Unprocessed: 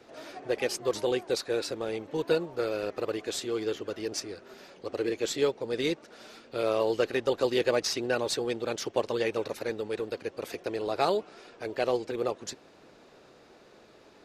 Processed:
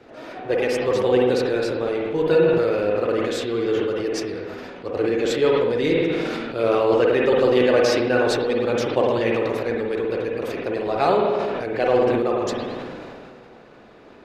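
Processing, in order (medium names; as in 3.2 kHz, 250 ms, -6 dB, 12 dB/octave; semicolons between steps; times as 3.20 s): tone controls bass +3 dB, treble -10 dB; spring tank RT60 1.1 s, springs 48/52 ms, chirp 70 ms, DRR 0 dB; decay stretcher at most 22 dB/s; trim +5 dB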